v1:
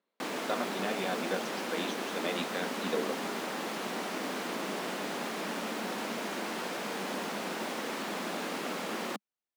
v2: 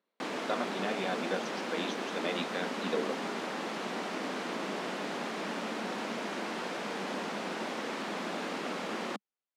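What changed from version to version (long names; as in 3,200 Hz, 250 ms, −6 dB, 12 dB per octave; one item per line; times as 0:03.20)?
background: add high-frequency loss of the air 58 metres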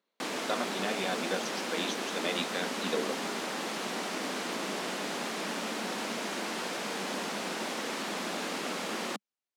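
master: remove low-pass filter 2,500 Hz 6 dB per octave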